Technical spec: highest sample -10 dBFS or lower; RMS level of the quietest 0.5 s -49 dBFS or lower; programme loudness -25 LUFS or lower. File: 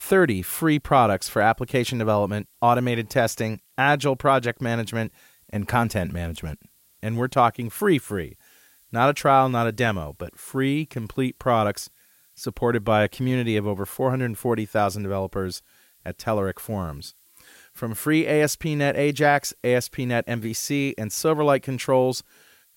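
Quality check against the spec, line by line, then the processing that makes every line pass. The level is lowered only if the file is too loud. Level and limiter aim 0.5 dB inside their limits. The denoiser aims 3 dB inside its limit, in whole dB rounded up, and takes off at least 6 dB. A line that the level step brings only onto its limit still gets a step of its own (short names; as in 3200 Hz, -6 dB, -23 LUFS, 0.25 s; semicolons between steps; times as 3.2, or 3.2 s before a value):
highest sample -6.0 dBFS: fail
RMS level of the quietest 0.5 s -58 dBFS: OK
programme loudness -23.0 LUFS: fail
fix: gain -2.5 dB; limiter -10.5 dBFS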